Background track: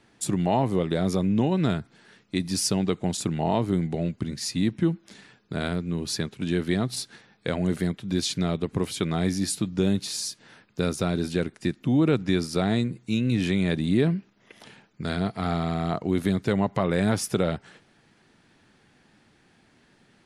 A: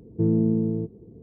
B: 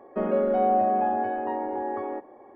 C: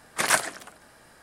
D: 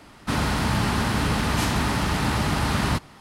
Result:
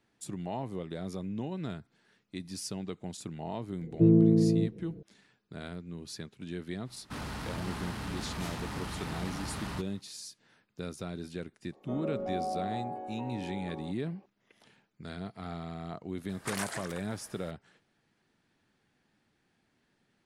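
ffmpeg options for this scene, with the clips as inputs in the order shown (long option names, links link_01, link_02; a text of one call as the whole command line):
ffmpeg -i bed.wav -i cue0.wav -i cue1.wav -i cue2.wav -i cue3.wav -filter_complex "[0:a]volume=-13.5dB[link_01];[1:a]aecho=1:1:6.1:0.95[link_02];[4:a]asoftclip=type=tanh:threshold=-19.5dB[link_03];[2:a]equalizer=frequency=1700:width=4.4:gain=-13[link_04];[3:a]acompressor=threshold=-30dB:ratio=6:attack=3.2:release=140:knee=1:detection=peak[link_05];[link_02]atrim=end=1.22,asetpts=PTS-STARTPTS,volume=-3dB,afade=type=in:duration=0.004:curve=hsin,afade=type=out:start_time=1.216:duration=0.004:curve=hsin,adelay=168021S[link_06];[link_03]atrim=end=3.2,asetpts=PTS-STARTPTS,volume=-13dB,afade=type=in:duration=0.05,afade=type=out:start_time=3.15:duration=0.05,adelay=6830[link_07];[link_04]atrim=end=2.54,asetpts=PTS-STARTPTS,volume=-12.5dB,afade=type=in:duration=0.004:curve=hsin,afade=type=out:start_time=2.536:duration=0.004:curve=hsin,adelay=11720[link_08];[link_05]atrim=end=1.22,asetpts=PTS-STARTPTS,volume=-2.5dB,afade=type=in:duration=0.004:curve=hsin,afade=type=out:start_time=1.216:duration=0.004:curve=hsin,adelay=16290[link_09];[link_01][link_06][link_07][link_08][link_09]amix=inputs=5:normalize=0" out.wav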